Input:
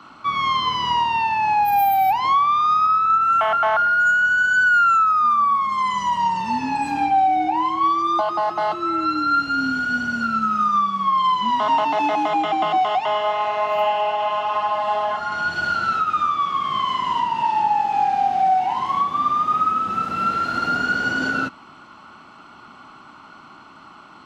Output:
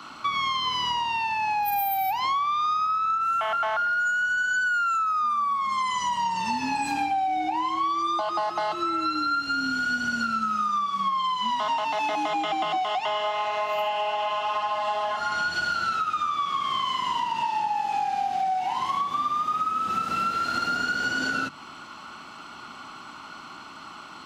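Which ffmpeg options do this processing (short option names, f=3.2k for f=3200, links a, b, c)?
-filter_complex "[0:a]asettb=1/sr,asplit=3[a][b][c];[a]atrim=end=11.354[d];[b]atrim=start=11.35:end=12.09,asetpts=PTS-STARTPTS,afade=t=in:d=0.004:c=qsin,afade=t=out:st=0.736:d=0.004:c=qsin,equalizer=f=320:t=o:w=0.35:g=-13.5[e];[c]atrim=start=12.086[f];[d][e]acrossfade=d=0.004:c1=hsin:c2=qsin[g];[g][f]acrossfade=d=0.004:c1=qsin:c2=hsin,highshelf=f=2.7k:g=11,bandreject=f=50:t=h:w=6,bandreject=f=100:t=h:w=6,bandreject=f=150:t=h:w=6,bandreject=f=200:t=h:w=6,acompressor=threshold=-24dB:ratio=6"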